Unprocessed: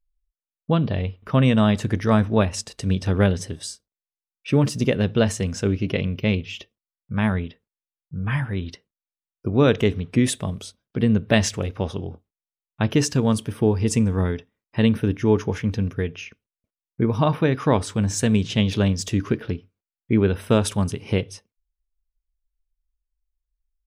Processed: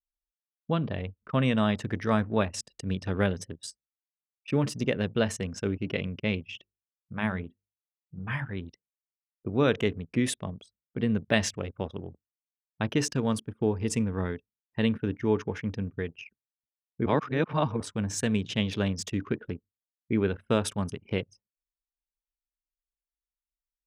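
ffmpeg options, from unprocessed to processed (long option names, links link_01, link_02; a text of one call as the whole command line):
ffmpeg -i in.wav -filter_complex "[0:a]asplit=3[link_01][link_02][link_03];[link_01]afade=type=out:start_time=6.54:duration=0.02[link_04];[link_02]bandreject=frequency=50:width_type=h:width=6,bandreject=frequency=100:width_type=h:width=6,bandreject=frequency=150:width_type=h:width=6,bandreject=frequency=200:width_type=h:width=6,bandreject=frequency=250:width_type=h:width=6,bandreject=frequency=300:width_type=h:width=6,bandreject=frequency=350:width_type=h:width=6,bandreject=frequency=400:width_type=h:width=6,bandreject=frequency=450:width_type=h:width=6,bandreject=frequency=500:width_type=h:width=6,afade=type=in:start_time=6.54:duration=0.02,afade=type=out:start_time=8.48:duration=0.02[link_05];[link_03]afade=type=in:start_time=8.48:duration=0.02[link_06];[link_04][link_05][link_06]amix=inputs=3:normalize=0,asplit=3[link_07][link_08][link_09];[link_07]atrim=end=17.062[link_10];[link_08]atrim=start=17.058:end=17.802,asetpts=PTS-STARTPTS,areverse[link_11];[link_09]atrim=start=17.798[link_12];[link_10][link_11]acrossfade=duration=0.004:curve1=hsin:curve2=hsin[link_13];[link_13][link_12]acrossfade=duration=0.004:curve1=hsin:curve2=hsin,adynamicequalizer=threshold=0.0126:dfrequency=1800:dqfactor=0.93:tfrequency=1800:tqfactor=0.93:attack=5:release=100:ratio=0.375:range=1.5:mode=boostabove:tftype=bell,anlmdn=15.8,highpass=frequency=120:poles=1,volume=-6.5dB" out.wav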